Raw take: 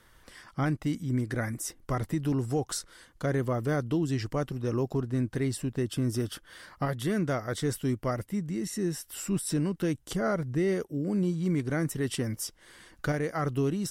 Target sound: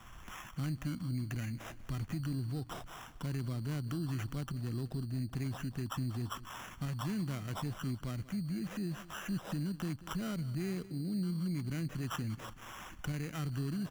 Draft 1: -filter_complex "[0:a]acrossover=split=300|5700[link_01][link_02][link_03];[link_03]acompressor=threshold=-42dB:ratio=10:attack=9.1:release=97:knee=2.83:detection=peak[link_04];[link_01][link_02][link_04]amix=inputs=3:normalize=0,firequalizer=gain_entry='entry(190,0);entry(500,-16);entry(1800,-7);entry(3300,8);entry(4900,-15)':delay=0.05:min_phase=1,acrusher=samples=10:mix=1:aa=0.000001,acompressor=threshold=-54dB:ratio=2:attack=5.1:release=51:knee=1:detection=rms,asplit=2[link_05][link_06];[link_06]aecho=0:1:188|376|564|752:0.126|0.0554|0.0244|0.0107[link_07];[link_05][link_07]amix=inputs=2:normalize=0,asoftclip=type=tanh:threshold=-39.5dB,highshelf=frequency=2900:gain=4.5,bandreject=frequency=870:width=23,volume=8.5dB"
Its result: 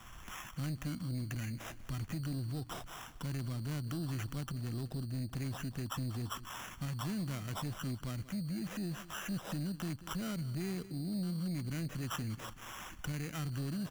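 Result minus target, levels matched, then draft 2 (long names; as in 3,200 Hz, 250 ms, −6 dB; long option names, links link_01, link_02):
soft clipping: distortion +14 dB; 8,000 Hz band +4.0 dB
-filter_complex "[0:a]acrossover=split=300|5700[link_01][link_02][link_03];[link_03]acompressor=threshold=-42dB:ratio=10:attack=9.1:release=97:knee=2.83:detection=peak[link_04];[link_01][link_02][link_04]amix=inputs=3:normalize=0,firequalizer=gain_entry='entry(190,0);entry(500,-16);entry(1800,-7);entry(3300,8);entry(4900,-15)':delay=0.05:min_phase=1,acrusher=samples=10:mix=1:aa=0.000001,acompressor=threshold=-54dB:ratio=2:attack=5.1:release=51:knee=1:detection=rms,asplit=2[link_05][link_06];[link_06]aecho=0:1:188|376|564|752:0.126|0.0554|0.0244|0.0107[link_07];[link_05][link_07]amix=inputs=2:normalize=0,asoftclip=type=tanh:threshold=-31dB,bandreject=frequency=870:width=23,volume=8.5dB"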